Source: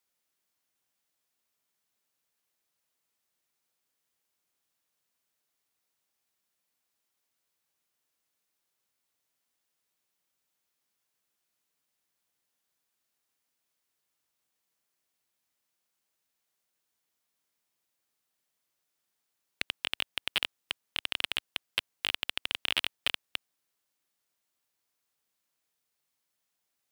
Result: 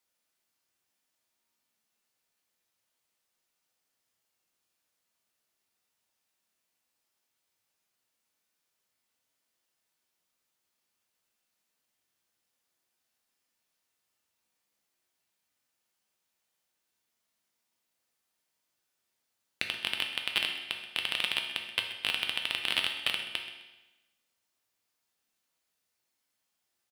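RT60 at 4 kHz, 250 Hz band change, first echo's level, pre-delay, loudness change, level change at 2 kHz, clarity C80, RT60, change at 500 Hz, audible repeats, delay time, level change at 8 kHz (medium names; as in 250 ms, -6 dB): 1.0 s, +2.0 dB, -14.5 dB, 3 ms, +2.0 dB, +2.5 dB, 7.5 dB, 1.1 s, +1.5 dB, 1, 129 ms, +0.5 dB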